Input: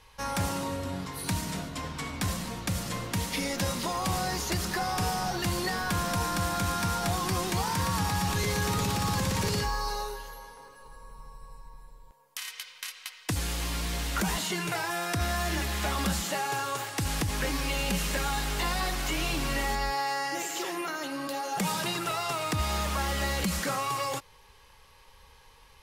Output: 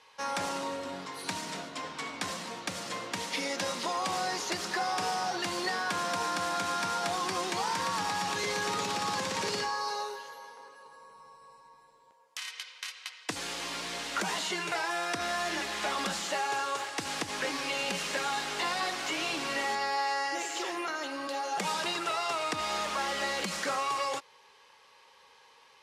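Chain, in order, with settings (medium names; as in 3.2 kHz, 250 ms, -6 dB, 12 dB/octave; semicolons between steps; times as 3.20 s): band-pass 340–7100 Hz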